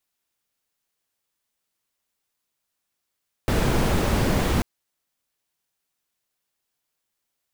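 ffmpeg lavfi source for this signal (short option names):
-f lavfi -i "anoisesrc=c=brown:a=0.442:d=1.14:r=44100:seed=1"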